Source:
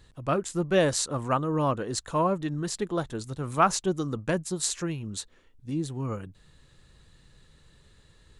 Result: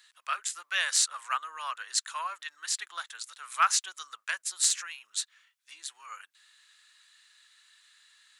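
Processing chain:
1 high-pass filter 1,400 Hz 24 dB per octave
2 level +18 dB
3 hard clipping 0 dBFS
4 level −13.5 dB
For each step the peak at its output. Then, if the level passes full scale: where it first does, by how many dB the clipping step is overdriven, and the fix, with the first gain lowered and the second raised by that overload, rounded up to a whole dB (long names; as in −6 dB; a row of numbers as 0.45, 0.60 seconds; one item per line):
−10.0, +8.0, 0.0, −13.5 dBFS
step 2, 8.0 dB
step 2 +10 dB, step 4 −5.5 dB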